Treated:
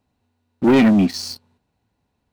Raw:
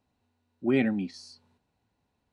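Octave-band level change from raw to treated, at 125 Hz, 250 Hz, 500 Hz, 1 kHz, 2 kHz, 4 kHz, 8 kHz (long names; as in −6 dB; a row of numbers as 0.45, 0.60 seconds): +13.0 dB, +13.0 dB, +10.5 dB, +17.5 dB, +9.5 dB, +16.5 dB, can't be measured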